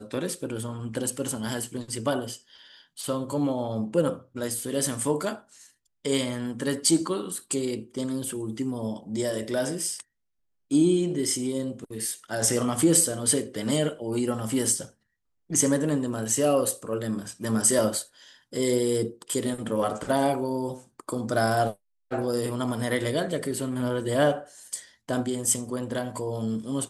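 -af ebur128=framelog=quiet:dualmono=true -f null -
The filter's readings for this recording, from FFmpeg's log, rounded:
Integrated loudness:
  I:         -23.9 LUFS
  Threshold: -34.2 LUFS
Loudness range:
  LRA:         5.2 LU
  Threshold: -44.1 LUFS
  LRA low:   -26.8 LUFS
  LRA high:  -21.7 LUFS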